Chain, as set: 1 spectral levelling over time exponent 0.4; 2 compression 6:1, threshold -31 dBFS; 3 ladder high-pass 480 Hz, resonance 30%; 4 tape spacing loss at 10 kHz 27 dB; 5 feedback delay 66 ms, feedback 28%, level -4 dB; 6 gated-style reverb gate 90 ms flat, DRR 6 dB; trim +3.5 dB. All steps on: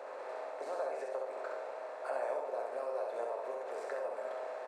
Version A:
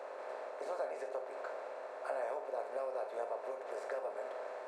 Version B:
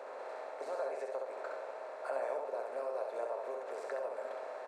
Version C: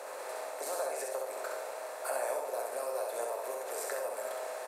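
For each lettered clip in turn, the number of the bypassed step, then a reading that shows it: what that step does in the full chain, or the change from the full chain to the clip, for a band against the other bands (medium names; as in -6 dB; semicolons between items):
5, echo-to-direct -1.0 dB to -6.0 dB; 6, echo-to-direct -1.0 dB to -3.5 dB; 4, 2 kHz band +3.0 dB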